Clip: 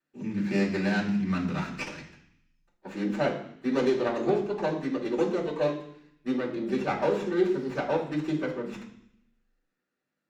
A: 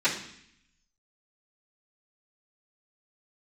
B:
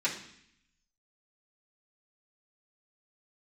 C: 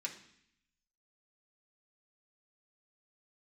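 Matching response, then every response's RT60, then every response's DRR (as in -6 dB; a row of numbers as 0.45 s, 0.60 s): A; 0.65 s, 0.65 s, 0.65 s; -16.0 dB, -9.5 dB, -2.0 dB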